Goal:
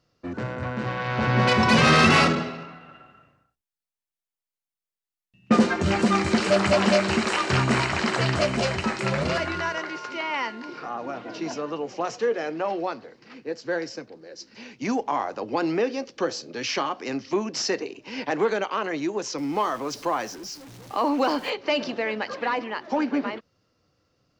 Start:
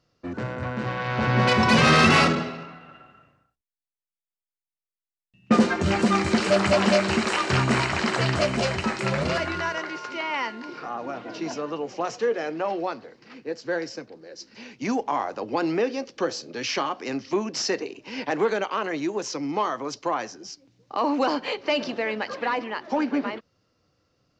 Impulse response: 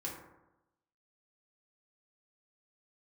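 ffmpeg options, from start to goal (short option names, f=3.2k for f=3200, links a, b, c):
-filter_complex "[0:a]asettb=1/sr,asplit=3[a][b][c];[a]atrim=end=19.384[d];[b]atrim=start=19.38:end=21.5,asetpts=PTS-STARTPTS,afade=t=in:d=0.004:c=qsin,afade=t=out:st=2.116:d=0.004:c=qsin,aeval=exprs='val(0)+0.5*0.0106*sgn(val(0))':c=same[e];[c]atrim=start=21.496[f];[d][e]acrossfade=d=0.004:c1=hsin:c2=qsin[g];[g][f]acrossfade=d=0.004:c1=qsin:c2=hsin"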